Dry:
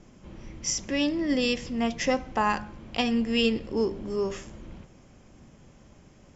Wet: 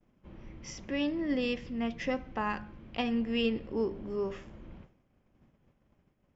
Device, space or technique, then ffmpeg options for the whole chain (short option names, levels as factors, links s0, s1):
hearing-loss simulation: -filter_complex "[0:a]asettb=1/sr,asplit=3[s0][s1][s2];[s0]atrim=end=1.594[s3];[s1]atrim=start=1.59:end=2.98,asetpts=PTS-STARTPTS,afade=t=in:d=0.004:c=qsin,afade=t=out:st=1.386:d=0.004:c=qsin,equalizer=f=800:t=o:w=1.3:g=-4.5[s4];[s2]atrim=start=2.976[s5];[s3][s4]acrossfade=d=0.004:c1=hsin:c2=qsin[s6];[s6][s5]acrossfade=d=0.004:c1=qsin:c2=hsin,lowpass=3000,agate=range=0.0224:threshold=0.00631:ratio=3:detection=peak,volume=0.562"